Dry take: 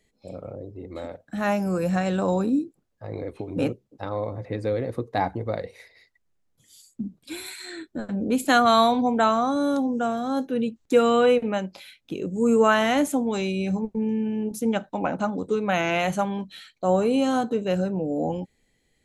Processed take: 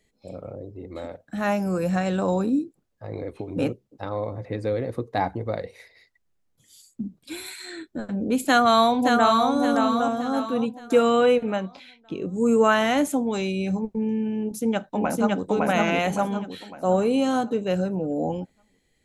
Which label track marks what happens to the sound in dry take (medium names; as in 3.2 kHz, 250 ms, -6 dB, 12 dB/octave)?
8.450000	9.510000	echo throw 570 ms, feedback 40%, level -4.5 dB
11.560000	12.290000	distance through air 99 m
14.390000	15.500000	echo throw 560 ms, feedback 40%, level 0 dB